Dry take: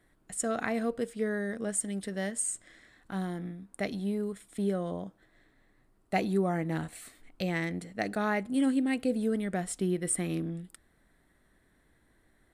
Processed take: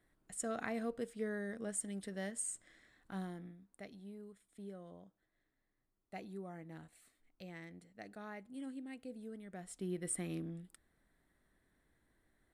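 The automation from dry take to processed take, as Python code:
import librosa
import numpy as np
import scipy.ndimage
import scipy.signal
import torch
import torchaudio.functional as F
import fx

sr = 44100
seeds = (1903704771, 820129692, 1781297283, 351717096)

y = fx.gain(x, sr, db=fx.line((3.19, -8.5), (3.9, -19.0), (9.44, -19.0), (9.99, -9.0)))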